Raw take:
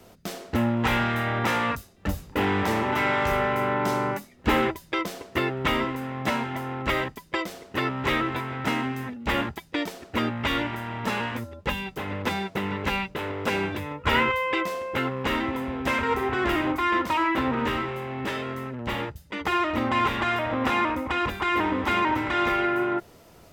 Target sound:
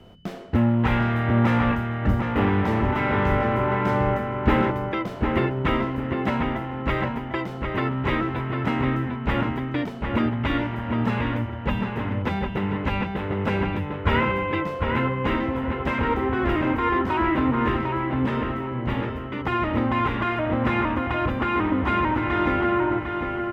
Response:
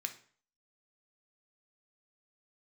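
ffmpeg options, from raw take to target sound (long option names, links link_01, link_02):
-filter_complex "[0:a]highshelf=frequency=3700:gain=-9,aeval=exprs='val(0)+0.00141*sin(2*PI*3000*n/s)':channel_layout=same,bass=frequency=250:gain=7,treble=frequency=4000:gain=-8,asplit=2[link_01][link_02];[link_02]adelay=751,lowpass=frequency=2900:poles=1,volume=-4dB,asplit=2[link_03][link_04];[link_04]adelay=751,lowpass=frequency=2900:poles=1,volume=0.32,asplit=2[link_05][link_06];[link_06]adelay=751,lowpass=frequency=2900:poles=1,volume=0.32,asplit=2[link_07][link_08];[link_08]adelay=751,lowpass=frequency=2900:poles=1,volume=0.32[link_09];[link_03][link_05][link_07][link_09]amix=inputs=4:normalize=0[link_10];[link_01][link_10]amix=inputs=2:normalize=0"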